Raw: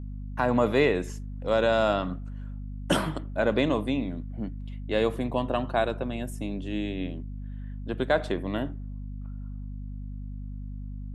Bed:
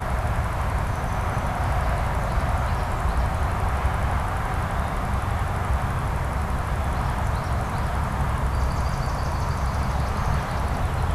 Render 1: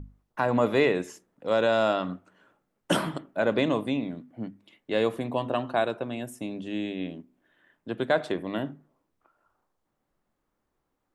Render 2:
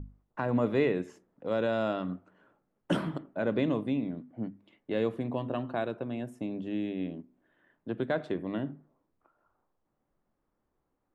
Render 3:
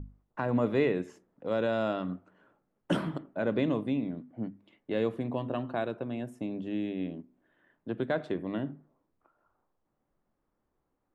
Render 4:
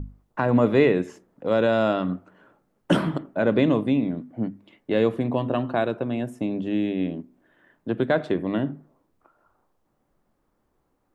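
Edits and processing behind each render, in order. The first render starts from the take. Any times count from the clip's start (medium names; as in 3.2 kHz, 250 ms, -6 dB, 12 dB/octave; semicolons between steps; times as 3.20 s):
hum notches 50/100/150/200/250 Hz
low-pass 1.2 kHz 6 dB/octave; dynamic bell 810 Hz, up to -7 dB, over -38 dBFS, Q 0.72
no audible change
trim +8.5 dB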